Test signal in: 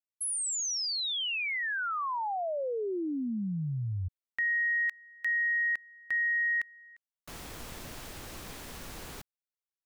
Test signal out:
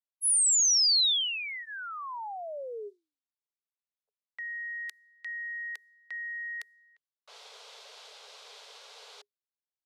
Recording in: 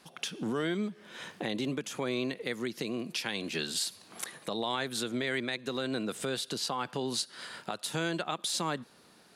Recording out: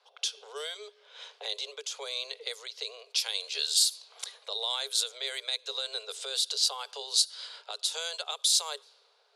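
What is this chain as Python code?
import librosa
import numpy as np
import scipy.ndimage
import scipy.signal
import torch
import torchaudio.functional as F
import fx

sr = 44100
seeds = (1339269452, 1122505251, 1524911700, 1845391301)

y = scipy.signal.sosfilt(scipy.signal.cheby1(10, 1.0, 410.0, 'highpass', fs=sr, output='sos'), x)
y = fx.env_lowpass(y, sr, base_hz=1700.0, full_db=-30.5)
y = fx.band_shelf(y, sr, hz=6700.0, db=15.0, octaves=2.3)
y = fx.notch(y, sr, hz=1800.0, q=10.0)
y = y * librosa.db_to_amplitude(-5.0)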